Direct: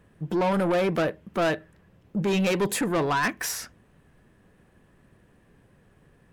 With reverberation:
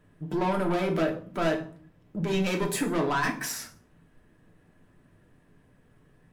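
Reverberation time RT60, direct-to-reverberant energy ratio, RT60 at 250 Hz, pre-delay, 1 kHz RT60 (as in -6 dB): 0.50 s, 1.5 dB, 0.75 s, 3 ms, 0.45 s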